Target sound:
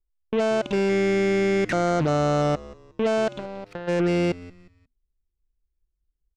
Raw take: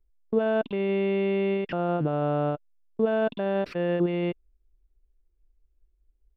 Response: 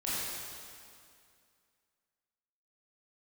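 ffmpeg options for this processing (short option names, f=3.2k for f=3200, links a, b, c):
-filter_complex "[0:a]asettb=1/sr,asplit=3[a][b][c];[a]atrim=end=0.894[d];[b]atrim=start=0.89:end=2.42,asetpts=PTS-STARTPTS,afade=t=in:d=0.004:c=qsin,afade=t=out:st=1.526:d=0.004:c=qsin,highshelf=f=2.6k:t=q:w=3:g=-7[e];[c]atrim=start=2.416[f];[d][e]acrossfade=d=0.004:c1=hsin:c2=qsin[g];[g][f]acrossfade=d=0.004:c1=qsin:c2=hsin,alimiter=limit=-24dB:level=0:latency=1:release=12,asplit=3[h][i][j];[h]afade=t=out:st=3.3:d=0.02[k];[i]acompressor=threshold=-38dB:ratio=4,afade=t=in:st=3.3:d=0.02,afade=t=out:st=3.87:d=0.02[l];[j]afade=t=in:st=3.87:d=0.02[m];[k][l][m]amix=inputs=3:normalize=0,aeval=exprs='0.0631*(cos(1*acos(clip(val(0)/0.0631,-1,1)))-cos(1*PI/2))+0.00794*(cos(7*acos(clip(val(0)/0.0631,-1,1)))-cos(7*PI/2))':c=same,asplit=4[n][o][p][q];[o]adelay=179,afreqshift=-84,volume=-19dB[r];[p]adelay=358,afreqshift=-168,volume=-28.6dB[s];[q]adelay=537,afreqshift=-252,volume=-38.3dB[t];[n][r][s][t]amix=inputs=4:normalize=0,volume=8.5dB"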